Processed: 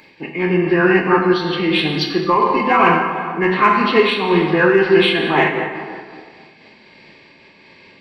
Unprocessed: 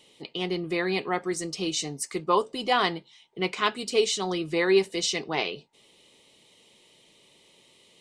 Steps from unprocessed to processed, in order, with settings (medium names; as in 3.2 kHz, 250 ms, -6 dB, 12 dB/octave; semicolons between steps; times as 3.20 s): knee-point frequency compression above 1.1 kHz 1.5:1; bass shelf 75 Hz -8 dB; band-stop 720 Hz, Q 15; in parallel at -8 dB: saturation -20 dBFS, distortion -13 dB; on the sum: graphic EQ 125/500/2000/4000 Hz -5/-9/-5/-8 dB; plate-style reverb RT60 2 s, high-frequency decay 0.6×, DRR 0.5 dB; loudness maximiser +16.5 dB; random flutter of the level, depth 50%